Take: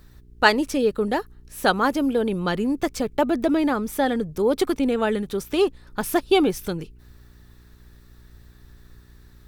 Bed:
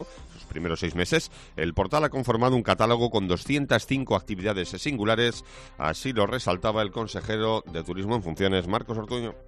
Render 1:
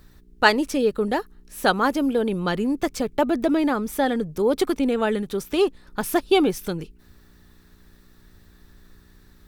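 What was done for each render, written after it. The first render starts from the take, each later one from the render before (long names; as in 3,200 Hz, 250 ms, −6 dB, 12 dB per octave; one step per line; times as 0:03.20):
hum removal 60 Hz, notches 2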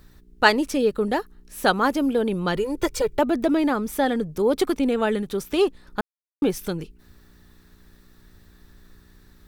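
0:02.56–0:03.19: comb filter 2.1 ms, depth 96%
0:06.01–0:06.42: silence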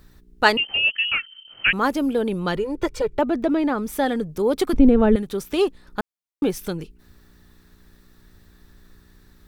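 0:00.57–0:01.73: voice inversion scrambler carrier 3,100 Hz
0:02.57–0:03.78: low-pass filter 2,900 Hz 6 dB per octave
0:04.73–0:05.16: spectral tilt −4.5 dB per octave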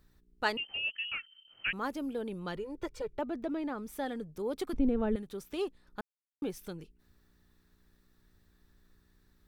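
level −14.5 dB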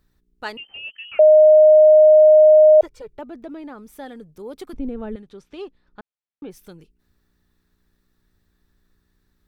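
0:01.19–0:02.81: beep over 617 Hz −6.5 dBFS
0:05.13–0:06.50: low-pass filter 6,000 Hz → 3,200 Hz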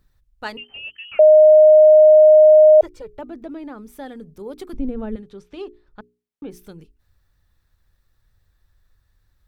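low-shelf EQ 280 Hz +5.5 dB
mains-hum notches 60/120/180/240/300/360/420 Hz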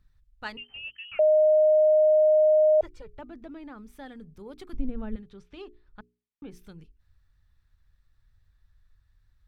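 low-pass filter 2,400 Hz 6 dB per octave
parametric band 460 Hz −11 dB 2.6 octaves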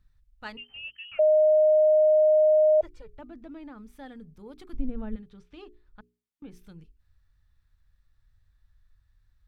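harmonic and percussive parts rebalanced percussive −4 dB
notch filter 390 Hz, Q 12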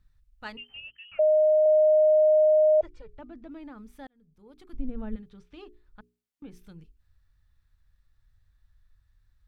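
0:00.80–0:01.66: high-frequency loss of the air 310 metres
0:02.45–0:03.51: high-frequency loss of the air 56 metres
0:04.07–0:05.08: fade in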